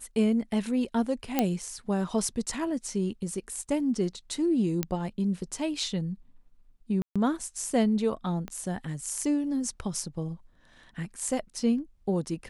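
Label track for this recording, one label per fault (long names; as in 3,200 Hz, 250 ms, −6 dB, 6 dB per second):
1.390000	1.390000	click −9 dBFS
4.830000	4.830000	click −12 dBFS
7.020000	7.160000	drop-out 136 ms
8.480000	8.480000	click −23 dBFS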